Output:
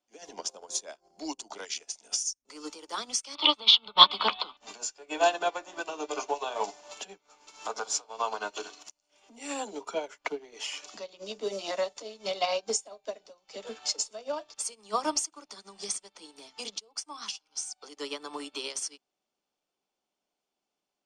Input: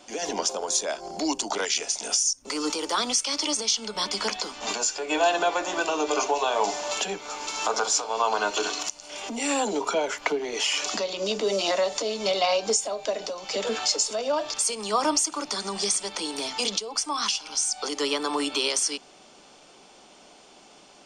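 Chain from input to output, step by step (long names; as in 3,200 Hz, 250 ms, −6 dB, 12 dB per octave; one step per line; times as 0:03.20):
0:03.35–0:04.57: drawn EQ curve 460 Hz 0 dB, 1,200 Hz +13 dB, 1,700 Hz −2 dB, 3,700 Hz +15 dB, 5,900 Hz −21 dB
expander for the loud parts 2.5 to 1, over −41 dBFS
level +4.5 dB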